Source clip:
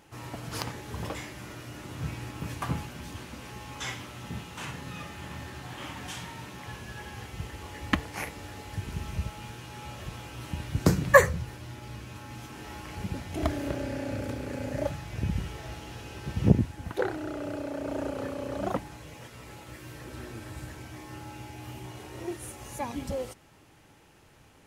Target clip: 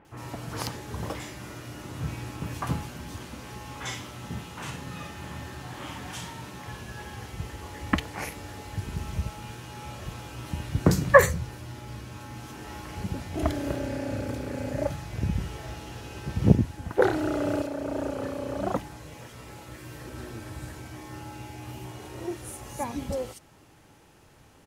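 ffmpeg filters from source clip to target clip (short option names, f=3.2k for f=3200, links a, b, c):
-filter_complex "[0:a]asettb=1/sr,asplit=3[a][b][c];[a]atrim=end=16.984[d];[b]atrim=start=16.98:end=17.62,asetpts=PTS-STARTPTS,afade=t=in:d=0.004:c=qsin,afade=t=out:st=0.636:d=0.004:c=qsin,acontrast=48[e];[c]atrim=start=17.616[f];[d][e]acrossfade=d=0.004:c1=hsin:c2=qsin[g];[g][f]acrossfade=d=0.004:c1=qsin:c2=hsin,acrossover=split=2400[h][i];[i]adelay=50[j];[h][j]amix=inputs=2:normalize=0,volume=2dB"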